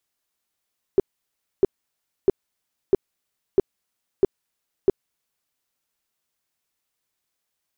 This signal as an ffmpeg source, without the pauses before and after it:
ffmpeg -f lavfi -i "aevalsrc='0.299*sin(2*PI*389*mod(t,0.65))*lt(mod(t,0.65),7/389)':duration=4.55:sample_rate=44100" out.wav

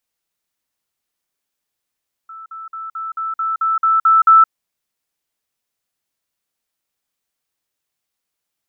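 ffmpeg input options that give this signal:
ffmpeg -f lavfi -i "aevalsrc='pow(10,(-32+3*floor(t/0.22))/20)*sin(2*PI*1320*t)*clip(min(mod(t,0.22),0.17-mod(t,0.22))/0.005,0,1)':duration=2.2:sample_rate=44100" out.wav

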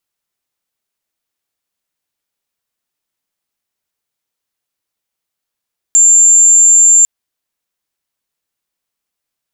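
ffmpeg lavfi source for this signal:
ffmpeg -f lavfi -i "sine=frequency=7290:duration=1.1:sample_rate=44100,volume=14.56dB" out.wav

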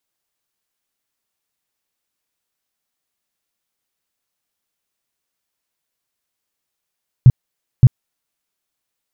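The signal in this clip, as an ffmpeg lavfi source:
ffmpeg -f lavfi -i "aevalsrc='0.841*sin(2*PI*126*mod(t,0.57))*lt(mod(t,0.57),5/126)':duration=1.14:sample_rate=44100" out.wav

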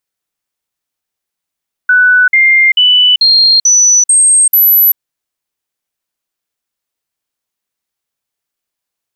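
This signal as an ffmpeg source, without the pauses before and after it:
ffmpeg -f lavfi -i "aevalsrc='0.631*clip(min(mod(t,0.44),0.39-mod(t,0.44))/0.005,0,1)*sin(2*PI*1490*pow(2,floor(t/0.44)/2)*mod(t,0.44))':duration=3.08:sample_rate=44100" out.wav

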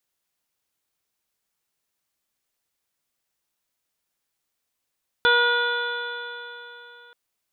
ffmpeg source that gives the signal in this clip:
ffmpeg -f lavfi -i "aevalsrc='0.0841*pow(10,-3*t/3.37)*sin(2*PI*478.36*t)+0.0708*pow(10,-3*t/3.37)*sin(2*PI*958.86*t)+0.158*pow(10,-3*t/3.37)*sin(2*PI*1443.65*t)+0.0188*pow(10,-3*t/3.37)*sin(2*PI*1934.81*t)+0.0211*pow(10,-3*t/3.37)*sin(2*PI*2434.4*t)+0.0158*pow(10,-3*t/3.37)*sin(2*PI*2944.42*t)+0.0794*pow(10,-3*t/3.37)*sin(2*PI*3466.79*t)+0.0168*pow(10,-3*t/3.37)*sin(2*PI*4003.35*t)':duration=1.88:sample_rate=44100" out.wav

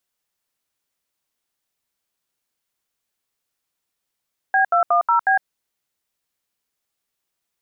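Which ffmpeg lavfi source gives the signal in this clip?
ffmpeg -f lavfi -i "aevalsrc='0.158*clip(min(mod(t,0.182),0.108-mod(t,0.182))/0.002,0,1)*(eq(floor(t/0.182),0)*(sin(2*PI*770*mod(t,0.182))+sin(2*PI*1633*mod(t,0.182)))+eq(floor(t/0.182),1)*(sin(2*PI*697*mod(t,0.182))+sin(2*PI*1336*mod(t,0.182)))+eq(floor(t/0.182),2)*(sin(2*PI*697*mod(t,0.182))+sin(2*PI*1209*mod(t,0.182)))+eq(floor(t/0.182),3)*(sin(2*PI*941*mod(t,0.182))+sin(2*PI*1336*mod(t,0.182)))+eq(floor(t/0.182),4)*(sin(2*PI*770*mod(t,0.182))+sin(2*PI*1633*mod(t,0.182))))':duration=0.91:sample_rate=44100" out.wav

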